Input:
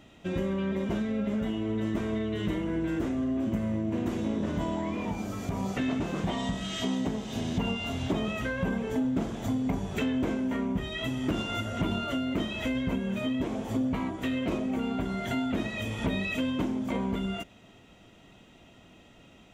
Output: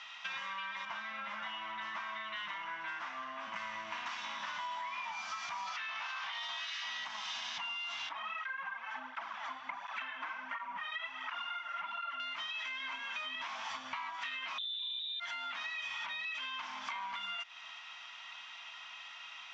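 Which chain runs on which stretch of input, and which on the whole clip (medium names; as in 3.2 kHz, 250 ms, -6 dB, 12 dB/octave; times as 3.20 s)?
0.85–3.56 s: high-pass 120 Hz 24 dB/octave + treble shelf 2.3 kHz -11 dB + band-stop 290 Hz, Q 5.4
5.66–7.04 s: spectral peaks clipped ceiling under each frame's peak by 15 dB + low-pass 5.4 kHz + doubling 16 ms -3.5 dB
8.09–12.20 s: three-band isolator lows -24 dB, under 170 Hz, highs -17 dB, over 2.4 kHz + cancelling through-zero flanger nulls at 1.4 Hz, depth 5.3 ms
12.80–13.36 s: resonant low shelf 220 Hz -7.5 dB, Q 3 + doubling 34 ms -11.5 dB
14.58–15.20 s: tilt EQ -4.5 dB/octave + comb of notches 530 Hz + frequency inversion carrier 3.8 kHz
whole clip: elliptic band-pass 1–5.5 kHz, stop band 40 dB; peak limiter -34.5 dBFS; compression 10:1, threshold -50 dBFS; trim +12.5 dB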